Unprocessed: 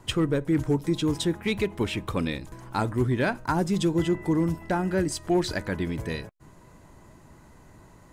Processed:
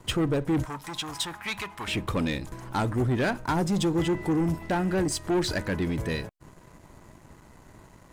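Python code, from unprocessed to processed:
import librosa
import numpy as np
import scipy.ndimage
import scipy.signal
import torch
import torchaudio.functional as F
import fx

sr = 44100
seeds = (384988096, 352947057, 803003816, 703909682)

y = fx.leveller(x, sr, passes=2)
y = fx.low_shelf_res(y, sr, hz=650.0, db=-13.0, q=1.5, at=(0.65, 1.88))
y = y * librosa.db_to_amplitude(-4.5)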